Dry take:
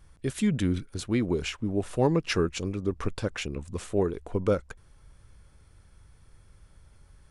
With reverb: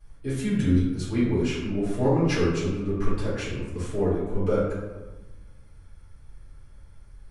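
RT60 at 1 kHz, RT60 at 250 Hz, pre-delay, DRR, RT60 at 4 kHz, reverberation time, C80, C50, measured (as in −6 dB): 1.2 s, 1.4 s, 3 ms, −11.5 dB, 0.65 s, 1.2 s, 3.5 dB, 0.5 dB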